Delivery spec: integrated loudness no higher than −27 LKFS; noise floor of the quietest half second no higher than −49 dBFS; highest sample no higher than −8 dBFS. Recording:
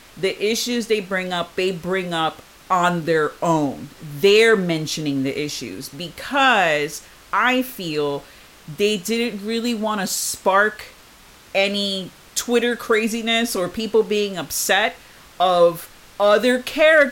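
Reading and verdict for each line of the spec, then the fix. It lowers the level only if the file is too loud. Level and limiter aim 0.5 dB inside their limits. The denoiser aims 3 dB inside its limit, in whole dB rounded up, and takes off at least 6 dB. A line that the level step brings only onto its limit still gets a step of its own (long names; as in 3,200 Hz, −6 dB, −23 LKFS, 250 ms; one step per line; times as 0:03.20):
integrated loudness −19.5 LKFS: out of spec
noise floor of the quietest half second −47 dBFS: out of spec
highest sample −5.0 dBFS: out of spec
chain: level −8 dB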